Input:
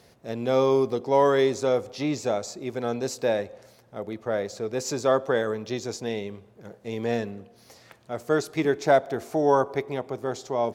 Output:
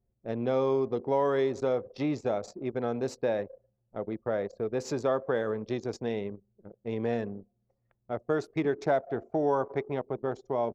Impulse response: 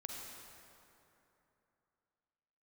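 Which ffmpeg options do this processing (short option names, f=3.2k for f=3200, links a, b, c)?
-af "anlmdn=2.51,acompressor=threshold=-27dB:ratio=2,aemphasis=mode=reproduction:type=75kf"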